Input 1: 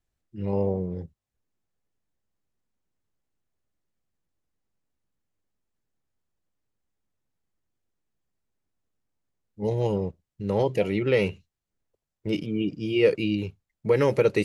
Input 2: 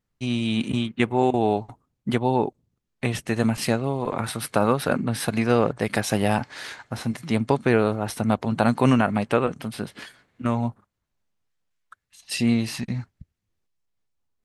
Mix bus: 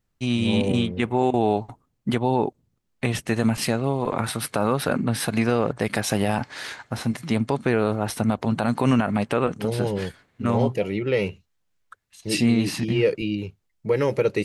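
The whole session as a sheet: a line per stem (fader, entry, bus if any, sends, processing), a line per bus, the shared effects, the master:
-0.5 dB, 0.00 s, no send, none
+2.0 dB, 0.00 s, no send, none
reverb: none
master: peak limiter -9.5 dBFS, peak gain reduction 8 dB

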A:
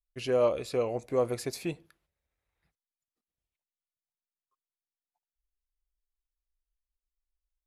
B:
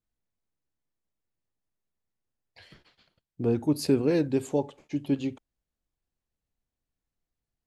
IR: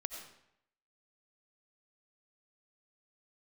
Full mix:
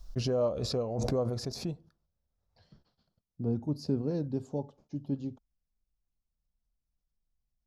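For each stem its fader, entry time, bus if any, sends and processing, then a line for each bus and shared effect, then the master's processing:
+2.5 dB, 0.00 s, no send, swell ahead of each attack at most 33 dB/s
-2.0 dB, 0.00 s, no send, none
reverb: none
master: FFT filter 220 Hz 0 dB, 320 Hz -9 dB, 670 Hz -6 dB, 1.4 kHz -12 dB, 2.2 kHz -25 dB, 5.4 kHz -6 dB, 8.5 kHz -22 dB

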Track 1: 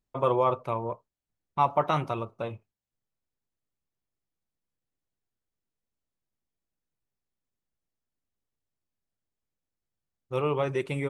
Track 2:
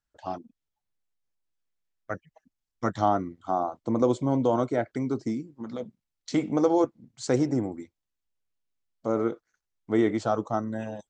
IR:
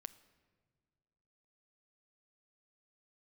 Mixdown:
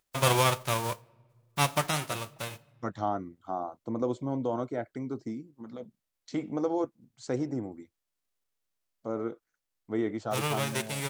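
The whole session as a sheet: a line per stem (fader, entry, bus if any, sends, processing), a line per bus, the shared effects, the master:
-0.5 dB, 0.00 s, send -4.5 dB, formants flattened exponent 0.3; vibrato 3 Hz 5.8 cents; auto duck -9 dB, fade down 1.40 s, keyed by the second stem
-7.0 dB, 0.00 s, no send, treble shelf 4.6 kHz -5 dB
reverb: on, pre-delay 7 ms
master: none

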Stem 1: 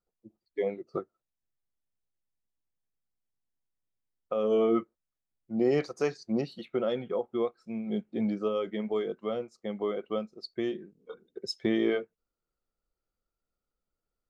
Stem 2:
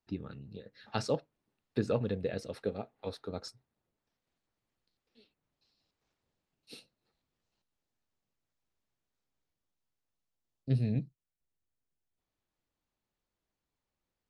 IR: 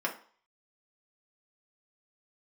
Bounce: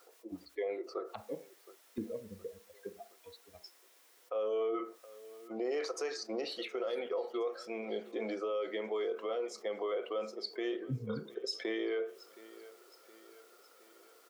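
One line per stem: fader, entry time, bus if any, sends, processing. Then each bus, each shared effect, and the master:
-7.0 dB, 0.00 s, send -11 dB, echo send -20 dB, Chebyshev high-pass 400 Hz, order 3; level flattener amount 50%
-3.0 dB, 0.20 s, send -8 dB, no echo send, expander on every frequency bin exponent 3; low-pass that closes with the level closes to 360 Hz, closed at -38 dBFS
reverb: on, RT60 0.45 s, pre-delay 3 ms
echo: feedback delay 718 ms, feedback 54%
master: peak limiter -27.5 dBFS, peak gain reduction 7 dB

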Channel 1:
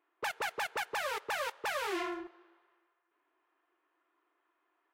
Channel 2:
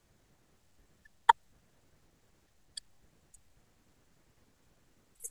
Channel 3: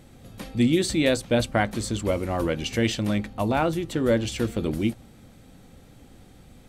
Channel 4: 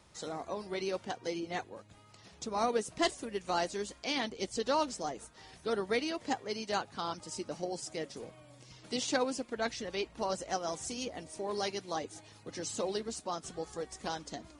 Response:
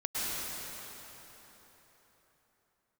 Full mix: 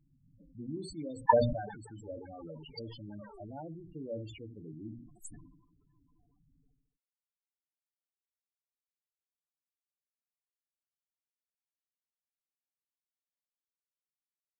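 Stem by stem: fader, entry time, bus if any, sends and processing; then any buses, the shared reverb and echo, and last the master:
-17.5 dB, 1.45 s, no send, echo send -9 dB, tone controls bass +14 dB, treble +15 dB; hum notches 60/120/180/240/300/360 Hz; three bands compressed up and down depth 70%
-2.0 dB, 0.00 s, no send, no echo send, expander on every frequency bin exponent 1.5; comb 5.2 ms, depth 91%
-19.0 dB, 0.00 s, no send, echo send -15.5 dB, hum notches 60/120/180/240/300 Hz
mute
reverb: none
echo: feedback delay 72 ms, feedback 29%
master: comb 6.9 ms, depth 42%; loudest bins only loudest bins 8; decay stretcher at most 63 dB/s

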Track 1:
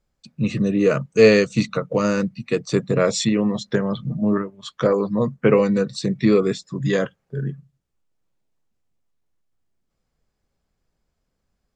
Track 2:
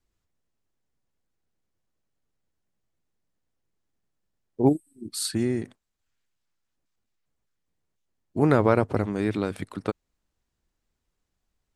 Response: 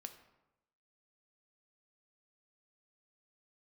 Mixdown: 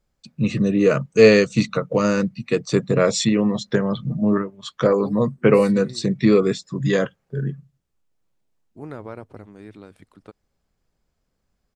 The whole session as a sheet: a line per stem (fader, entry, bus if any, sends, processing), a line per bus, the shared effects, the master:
+1.0 dB, 0.00 s, no send, none
-15.5 dB, 0.40 s, no send, none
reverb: none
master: none

